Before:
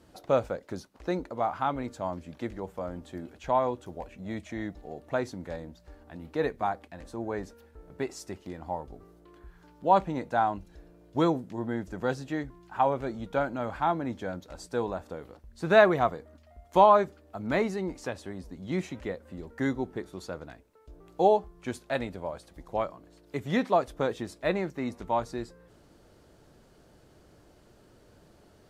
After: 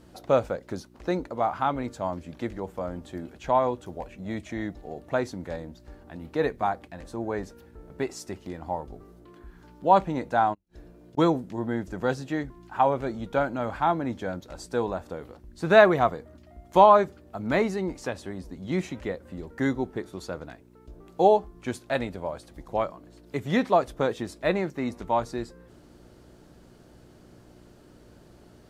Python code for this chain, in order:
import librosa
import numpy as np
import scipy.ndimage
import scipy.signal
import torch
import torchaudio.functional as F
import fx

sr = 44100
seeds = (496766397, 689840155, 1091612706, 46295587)

y = fx.dmg_buzz(x, sr, base_hz=60.0, harmonics=6, level_db=-59.0, tilt_db=0, odd_only=False)
y = fx.gate_flip(y, sr, shuts_db=-37.0, range_db=-36, at=(10.53, 11.17), fade=0.02)
y = y * librosa.db_to_amplitude(3.0)